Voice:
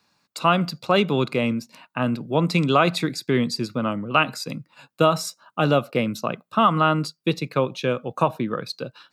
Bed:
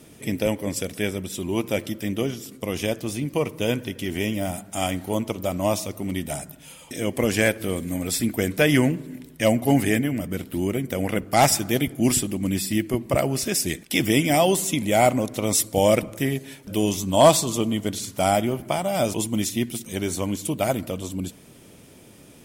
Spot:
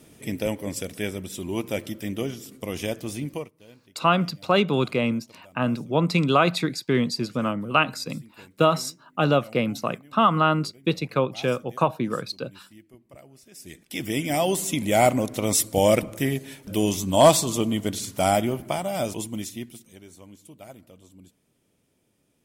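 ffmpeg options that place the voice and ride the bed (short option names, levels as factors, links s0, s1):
-filter_complex "[0:a]adelay=3600,volume=0.891[s0];[1:a]volume=14.1,afade=t=out:st=3.28:d=0.22:silence=0.0668344,afade=t=in:st=13.51:d=1.46:silence=0.0473151,afade=t=out:st=18.37:d=1.63:silence=0.0944061[s1];[s0][s1]amix=inputs=2:normalize=0"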